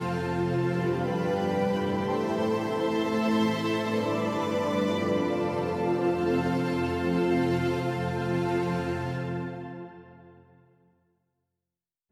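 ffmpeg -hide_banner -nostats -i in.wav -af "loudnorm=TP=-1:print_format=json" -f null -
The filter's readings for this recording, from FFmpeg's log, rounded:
"input_i" : "-27.8",
"input_tp" : "-14.2",
"input_lra" : "14.5",
"input_thresh" : "-38.9",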